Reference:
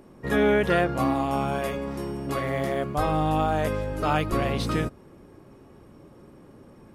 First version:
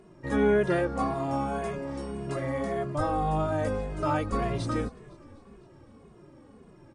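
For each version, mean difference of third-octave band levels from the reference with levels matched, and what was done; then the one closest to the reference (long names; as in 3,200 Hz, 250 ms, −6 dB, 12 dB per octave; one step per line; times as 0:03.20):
4.0 dB: dynamic equaliser 3,000 Hz, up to −8 dB, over −46 dBFS, Q 1.2
linear-phase brick-wall low-pass 10,000 Hz
echo with shifted repeats 254 ms, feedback 61%, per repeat −35 Hz, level −22.5 dB
barber-pole flanger 2.4 ms −1.8 Hz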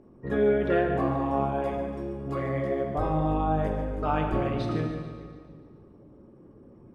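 6.5 dB: spectral envelope exaggerated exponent 1.5
low-pass filter 8,400 Hz 12 dB per octave
echo with a time of its own for lows and highs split 460 Hz, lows 247 ms, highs 145 ms, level −12 dB
dense smooth reverb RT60 1.7 s, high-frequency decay 0.9×, DRR 3.5 dB
level −4 dB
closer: first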